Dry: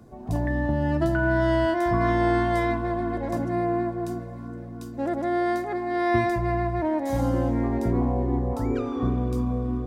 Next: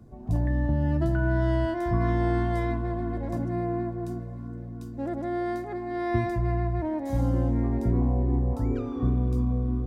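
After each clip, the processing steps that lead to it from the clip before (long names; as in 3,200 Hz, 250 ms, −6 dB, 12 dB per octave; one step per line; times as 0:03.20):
low-shelf EQ 240 Hz +12 dB
level −8 dB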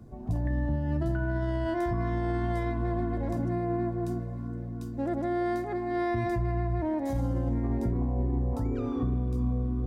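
brickwall limiter −23 dBFS, peak gain reduction 9.5 dB
level +1.5 dB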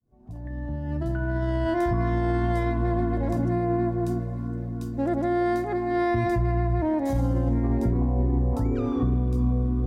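fade in at the beginning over 1.72 s
level +5 dB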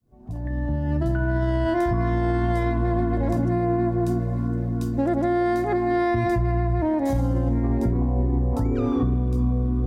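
downward compressor, threshold −25 dBFS, peak gain reduction 6 dB
level +6.5 dB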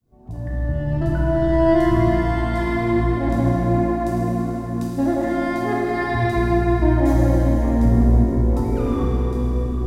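four-comb reverb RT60 3.8 s, combs from 26 ms, DRR −4 dB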